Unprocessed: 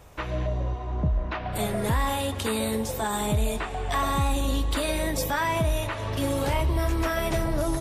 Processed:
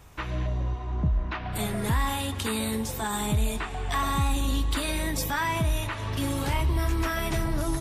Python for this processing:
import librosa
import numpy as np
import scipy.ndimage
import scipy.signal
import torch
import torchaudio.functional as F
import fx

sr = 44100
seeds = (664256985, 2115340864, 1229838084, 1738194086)

y = fx.peak_eq(x, sr, hz=560.0, db=-8.5, octaves=0.8)